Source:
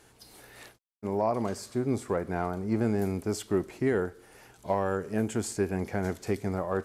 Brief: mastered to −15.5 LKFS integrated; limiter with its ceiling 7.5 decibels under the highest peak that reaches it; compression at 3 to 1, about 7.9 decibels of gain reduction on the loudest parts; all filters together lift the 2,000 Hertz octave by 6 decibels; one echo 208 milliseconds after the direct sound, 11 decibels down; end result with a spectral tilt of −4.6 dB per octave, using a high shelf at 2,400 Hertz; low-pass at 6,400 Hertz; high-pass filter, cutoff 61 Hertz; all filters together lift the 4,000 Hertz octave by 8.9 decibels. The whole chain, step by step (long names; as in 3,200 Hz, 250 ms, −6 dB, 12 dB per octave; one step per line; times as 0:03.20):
high-pass filter 61 Hz
low-pass filter 6,400 Hz
parametric band 2,000 Hz +4.5 dB
high-shelf EQ 2,400 Hz +4.5 dB
parametric band 4,000 Hz +7 dB
downward compressor 3 to 1, threshold −32 dBFS
brickwall limiter −25.5 dBFS
single-tap delay 208 ms −11 dB
level +22.5 dB